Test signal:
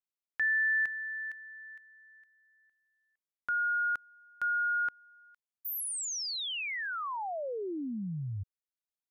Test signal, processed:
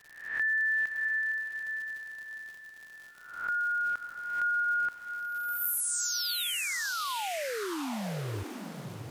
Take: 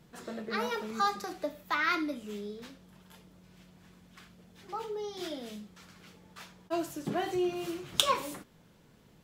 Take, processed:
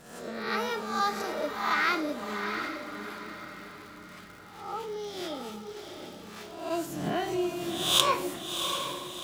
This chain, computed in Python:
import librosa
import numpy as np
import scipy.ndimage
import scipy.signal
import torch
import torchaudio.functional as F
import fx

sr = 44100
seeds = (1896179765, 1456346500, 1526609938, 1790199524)

y = fx.spec_swells(x, sr, rise_s=0.69)
y = fx.dmg_crackle(y, sr, seeds[0], per_s=130.0, level_db=-41.0)
y = fx.echo_diffused(y, sr, ms=706, feedback_pct=44, wet_db=-6.5)